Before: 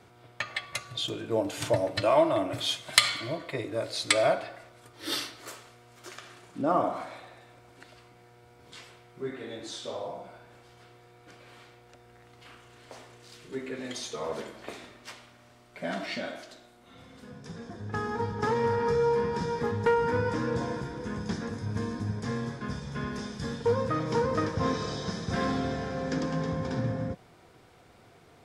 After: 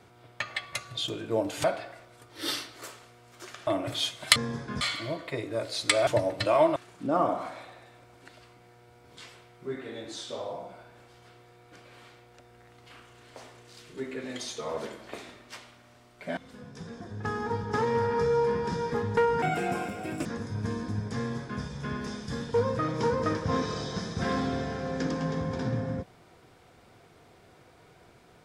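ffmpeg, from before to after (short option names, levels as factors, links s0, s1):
-filter_complex "[0:a]asplit=10[s0][s1][s2][s3][s4][s5][s6][s7][s8][s9];[s0]atrim=end=1.642[s10];[s1]atrim=start=4.278:end=6.312[s11];[s2]atrim=start=2.328:end=3.022[s12];[s3]atrim=start=22.288:end=22.742[s13];[s4]atrim=start=3.018:end=4.282[s14];[s5]atrim=start=1.638:end=2.332[s15];[s6]atrim=start=6.308:end=15.922[s16];[s7]atrim=start=17.058:end=20.114[s17];[s8]atrim=start=20.11:end=21.37,asetpts=PTS-STARTPTS,asetrate=66591,aresample=44100[s18];[s9]atrim=start=21.366[s19];[s10][s11]acrossfade=d=0.004:c1=hsin:c2=hsin[s20];[s20][s12]acrossfade=d=0.004:c1=hsin:c2=hsin[s21];[s21][s13]acrossfade=d=0.004:c1=hsin:c2=hsin[s22];[s22][s14]acrossfade=d=0.004:c1=hsin:c2=hsin[s23];[s23][s15]acrossfade=d=0.004:c1=hsin:c2=hsin[s24];[s24][s16]acrossfade=d=0.004:c1=hsin:c2=hsin[s25];[s25][s17]acrossfade=d=0.004:c1=hsin:c2=hsin[s26];[s26][s18]acrossfade=d=0.004:c1=hsin:c2=hsin[s27];[s27][s19]acrossfade=d=0.004:c1=hsin:c2=hsin"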